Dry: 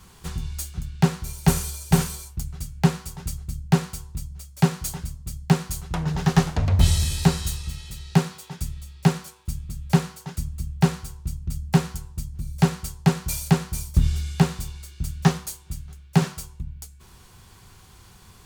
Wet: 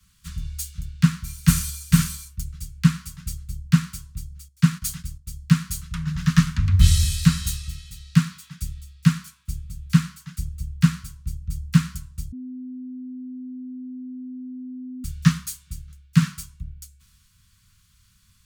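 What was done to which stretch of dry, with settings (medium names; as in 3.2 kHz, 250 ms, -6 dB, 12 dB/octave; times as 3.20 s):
4.48–5.30 s: gate -39 dBFS, range -10 dB
12.32–15.04 s: bleep 254 Hz -22 dBFS
whole clip: inverse Chebyshev band-stop 340–800 Hz, stop band 40 dB; three bands expanded up and down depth 40%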